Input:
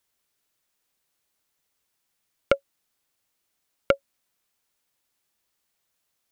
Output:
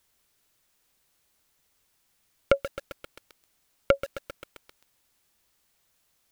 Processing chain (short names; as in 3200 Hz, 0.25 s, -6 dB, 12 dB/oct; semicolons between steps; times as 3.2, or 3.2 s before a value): low shelf 100 Hz +8 dB; limiter -10.5 dBFS, peak gain reduction 7.5 dB; lo-fi delay 0.132 s, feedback 80%, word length 6-bit, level -12.5 dB; gain +6 dB